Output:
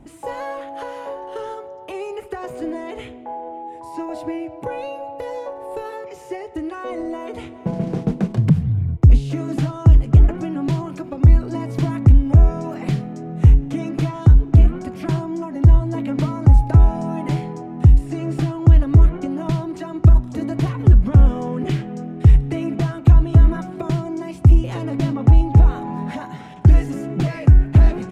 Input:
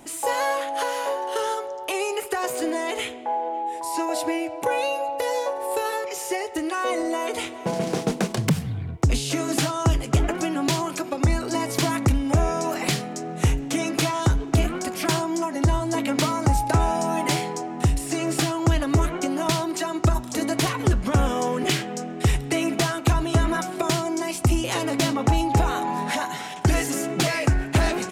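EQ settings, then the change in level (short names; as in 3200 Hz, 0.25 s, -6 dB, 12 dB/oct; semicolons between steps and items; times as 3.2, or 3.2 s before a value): tone controls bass +8 dB, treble -5 dB; tilt -2.5 dB/oct; -6.0 dB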